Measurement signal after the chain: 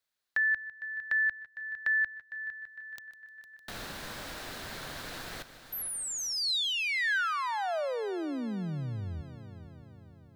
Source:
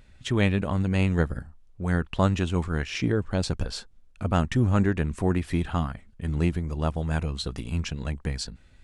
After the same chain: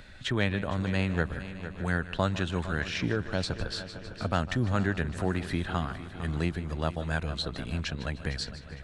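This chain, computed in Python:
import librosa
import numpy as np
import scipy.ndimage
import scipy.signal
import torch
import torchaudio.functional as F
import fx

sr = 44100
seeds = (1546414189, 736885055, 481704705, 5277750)

y = fx.graphic_eq_15(x, sr, hz=(630, 1600, 4000), db=(4, 8, 8))
y = fx.echo_heads(y, sr, ms=152, heads='first and third', feedback_pct=54, wet_db=-16.5)
y = fx.band_squash(y, sr, depth_pct=40)
y = y * librosa.db_to_amplitude(-6.0)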